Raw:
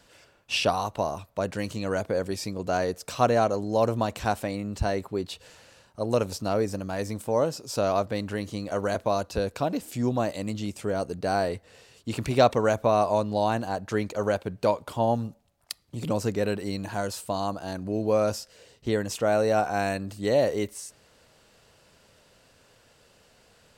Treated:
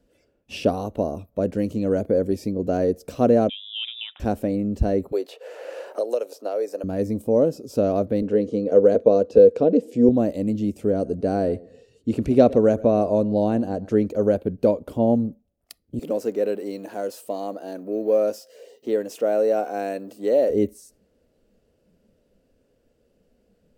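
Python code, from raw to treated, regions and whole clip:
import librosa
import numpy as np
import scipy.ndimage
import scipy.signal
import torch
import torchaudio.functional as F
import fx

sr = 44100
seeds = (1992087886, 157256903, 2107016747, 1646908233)

y = fx.chain(x, sr, fx.freq_invert(carrier_hz=3700),
    fx.highpass(hz=1200.0, slope=12), at=(3.49, 4.2))
y = fx.chain(y, sr, fx.highpass(hz=490.0, slope=24),
    fx.band_squash(depth_pct=100), at=(5.12, 6.84))
y = fx.chain(y, sr, fx.bandpass_edges(low_hz=140.0, high_hz=7100.0),
    fx.peak_eq(hz=470.0, db=14.5, octaves=0.28), at=(8.22, 10.09))
y = fx.chain(y, sr, fx.lowpass(hz=11000.0, slope=12),
    fx.echo_feedback(ms=116, feedback_pct=24, wet_db=-21.5), at=(10.93, 14.06))
y = fx.chain(y, sr, fx.law_mismatch(coded='mu'),
    fx.highpass(hz=470.0, slope=12), at=(15.99, 20.5))
y = fx.graphic_eq(y, sr, hz=(125, 250, 500, 1000, 2000, 4000, 8000), db=(-7, 9, 8, -10, -4, -7, -7))
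y = fx.noise_reduce_blind(y, sr, reduce_db=10)
y = fx.low_shelf(y, sr, hz=170.0, db=11.0)
y = y * librosa.db_to_amplitude(-1.0)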